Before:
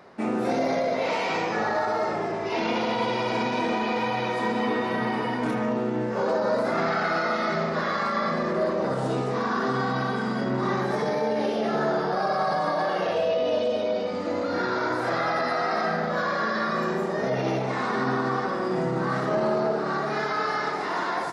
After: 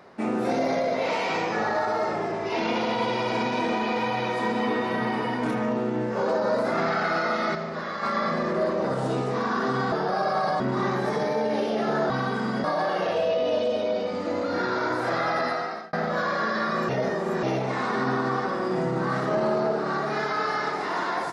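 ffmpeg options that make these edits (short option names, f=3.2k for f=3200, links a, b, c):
-filter_complex "[0:a]asplit=10[a][b][c][d][e][f][g][h][i][j];[a]atrim=end=7.552[k];[b]atrim=start=7.548:end=8.032,asetpts=PTS-STARTPTS,volume=-5.5dB[l];[c]atrim=start=8.028:end=9.922[m];[d]atrim=start=11.958:end=12.642[n];[e]atrim=start=10.458:end=11.962[o];[f]atrim=start=9.918:end=10.462[p];[g]atrim=start=12.638:end=15.93,asetpts=PTS-STARTPTS,afade=t=out:st=2.822:d=0.47[q];[h]atrim=start=15.93:end=16.892,asetpts=PTS-STARTPTS,afade=t=in:d=0.004:c=hsin[r];[i]atrim=start=16.888:end=17.432,asetpts=PTS-STARTPTS,areverse[s];[j]atrim=start=17.428[t];[k][l]acrossfade=d=0.004:c1=hsin:c2=hsin[u];[u][m]acrossfade=d=0.004:c1=hsin:c2=hsin[v];[v][n]acrossfade=d=0.004:c1=hsin:c2=hsin[w];[w][o]acrossfade=d=0.004:c1=hsin:c2=hsin[x];[x][p]acrossfade=d=0.004:c1=hsin:c2=hsin[y];[q][r]concat=n=2:v=0:a=1[z];[y][z]acrossfade=d=0.004:c1=hsin:c2=hsin[aa];[aa][s]acrossfade=d=0.004:c1=hsin:c2=hsin[ab];[ab][t]acrossfade=d=0.004:c1=hsin:c2=hsin"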